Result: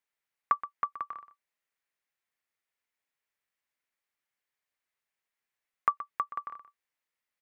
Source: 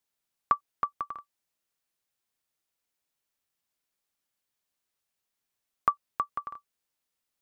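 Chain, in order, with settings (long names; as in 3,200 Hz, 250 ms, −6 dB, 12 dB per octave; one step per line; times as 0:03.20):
graphic EQ with 10 bands 500 Hz +4 dB, 1,000 Hz +4 dB, 2,000 Hz +12 dB
on a send: single-tap delay 124 ms −14 dB
on the sum: level −9 dB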